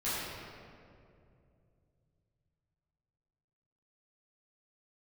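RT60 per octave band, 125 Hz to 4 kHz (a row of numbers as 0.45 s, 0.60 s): 4.5 s, 3.2 s, 2.9 s, 2.1 s, 1.8 s, 1.3 s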